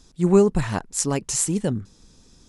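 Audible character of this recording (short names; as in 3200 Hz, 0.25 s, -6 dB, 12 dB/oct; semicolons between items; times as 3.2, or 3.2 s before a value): noise floor -56 dBFS; spectral tilt -5.0 dB/oct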